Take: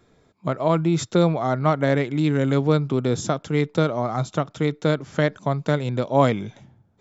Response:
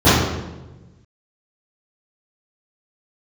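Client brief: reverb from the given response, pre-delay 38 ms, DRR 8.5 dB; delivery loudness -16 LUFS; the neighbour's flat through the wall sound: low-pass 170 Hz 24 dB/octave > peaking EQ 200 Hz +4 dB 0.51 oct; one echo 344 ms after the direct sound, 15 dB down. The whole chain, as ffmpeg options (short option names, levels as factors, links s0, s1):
-filter_complex "[0:a]aecho=1:1:344:0.178,asplit=2[s0][s1];[1:a]atrim=start_sample=2205,adelay=38[s2];[s1][s2]afir=irnorm=-1:irlink=0,volume=0.015[s3];[s0][s3]amix=inputs=2:normalize=0,lowpass=f=170:w=0.5412,lowpass=f=170:w=1.3066,equalizer=f=200:t=o:w=0.51:g=4,volume=2.51"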